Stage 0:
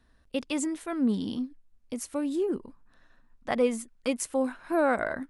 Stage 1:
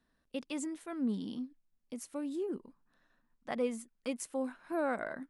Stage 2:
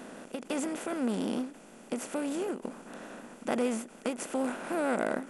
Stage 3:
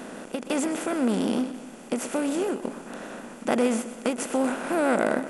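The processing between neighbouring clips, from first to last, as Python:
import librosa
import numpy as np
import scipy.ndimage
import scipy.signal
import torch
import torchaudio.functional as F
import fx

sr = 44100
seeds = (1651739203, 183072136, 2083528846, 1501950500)

y1 = fx.low_shelf_res(x, sr, hz=120.0, db=-7.5, q=1.5)
y1 = F.gain(torch.from_numpy(y1), -9.0).numpy()
y2 = fx.bin_compress(y1, sr, power=0.4)
y2 = fx.vibrato(y2, sr, rate_hz=6.6, depth_cents=34.0)
y2 = fx.end_taper(y2, sr, db_per_s=160.0)
y3 = fx.echo_feedback(y2, sr, ms=125, feedback_pct=48, wet_db=-13.5)
y3 = F.gain(torch.from_numpy(y3), 6.5).numpy()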